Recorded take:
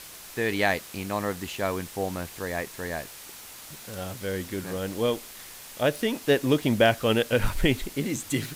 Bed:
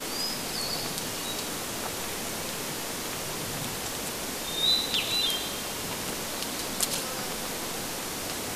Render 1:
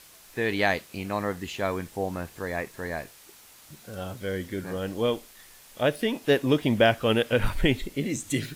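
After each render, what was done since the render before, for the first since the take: noise print and reduce 8 dB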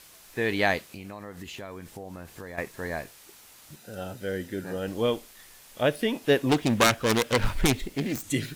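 0.84–2.58 s: compression, threshold -36 dBFS; 3.76–4.88 s: comb of notches 1.1 kHz; 6.49–8.24 s: self-modulated delay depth 0.49 ms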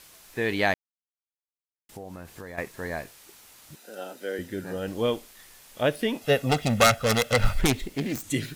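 0.74–1.89 s: mute; 3.75–4.39 s: high-pass 260 Hz 24 dB/octave; 6.21–7.60 s: comb 1.5 ms, depth 74%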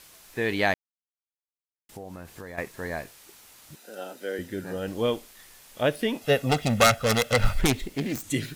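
no audible change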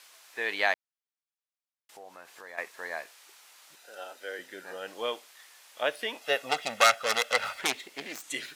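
high-pass 740 Hz 12 dB/octave; treble shelf 9.6 kHz -10.5 dB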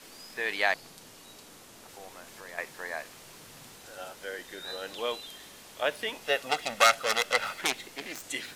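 add bed -18 dB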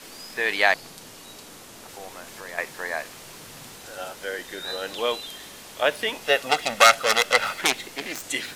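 trim +7 dB; peak limiter -1 dBFS, peak gain reduction 1 dB

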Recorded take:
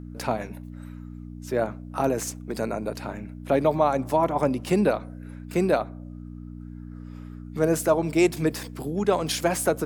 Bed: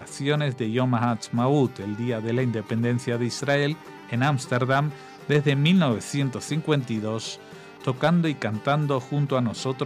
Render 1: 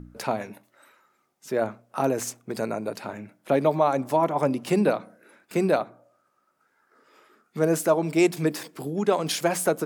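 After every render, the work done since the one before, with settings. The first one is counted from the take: de-hum 60 Hz, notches 5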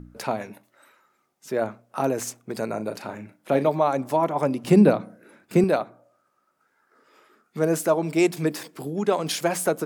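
2.67–3.69 s: doubling 37 ms -10 dB; 4.64–5.64 s: bass shelf 320 Hz +12 dB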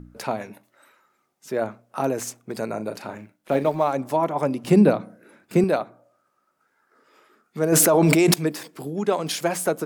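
3.18–3.95 s: companding laws mixed up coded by A; 7.72–8.34 s: level flattener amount 100%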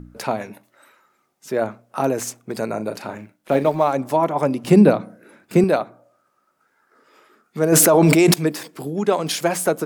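trim +3.5 dB; peak limiter -1 dBFS, peak gain reduction 2.5 dB

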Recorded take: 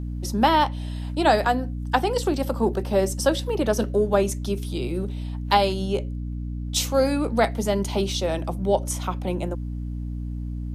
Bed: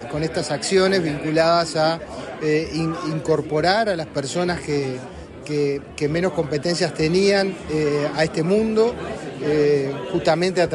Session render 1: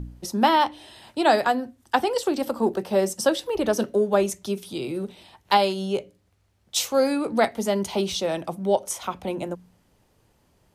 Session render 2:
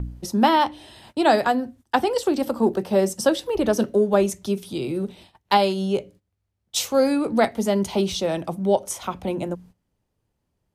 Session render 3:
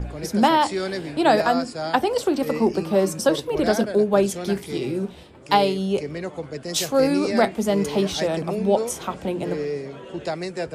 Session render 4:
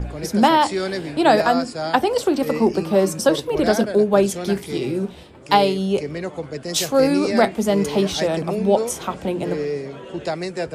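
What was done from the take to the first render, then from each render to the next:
de-hum 60 Hz, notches 5
gate -48 dBFS, range -16 dB; bass shelf 300 Hz +6.5 dB
add bed -10 dB
trim +2.5 dB

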